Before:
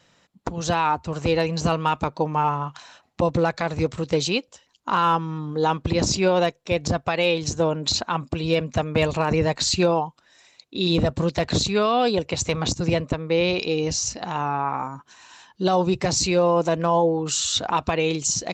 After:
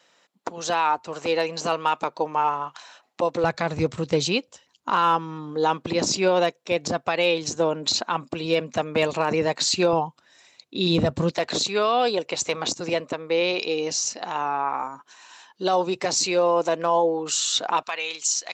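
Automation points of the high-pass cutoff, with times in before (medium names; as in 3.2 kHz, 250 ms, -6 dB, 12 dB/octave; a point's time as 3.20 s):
380 Hz
from 3.44 s 100 Hz
from 4.90 s 240 Hz
from 9.93 s 100 Hz
from 11.31 s 350 Hz
from 17.83 s 1.1 kHz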